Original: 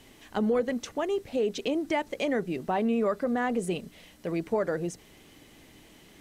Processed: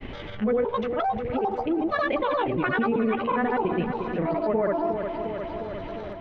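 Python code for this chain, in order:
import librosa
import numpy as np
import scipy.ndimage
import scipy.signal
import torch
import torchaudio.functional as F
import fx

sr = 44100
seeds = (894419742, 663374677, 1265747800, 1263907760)

p1 = fx.pitch_trill(x, sr, semitones=11.5, every_ms=205)
p2 = scipy.signal.sosfilt(scipy.signal.butter(4, 2800.0, 'lowpass', fs=sr, output='sos'), p1)
p3 = fx.low_shelf(p2, sr, hz=130.0, db=8.5)
p4 = fx.level_steps(p3, sr, step_db=20)
p5 = p3 + (p4 * librosa.db_to_amplitude(0.0))
p6 = fx.granulator(p5, sr, seeds[0], grain_ms=100.0, per_s=20.0, spray_ms=100.0, spread_st=0)
p7 = p6 + fx.echo_feedback(p6, sr, ms=356, feedback_pct=56, wet_db=-11.5, dry=0)
y = fx.env_flatten(p7, sr, amount_pct=50)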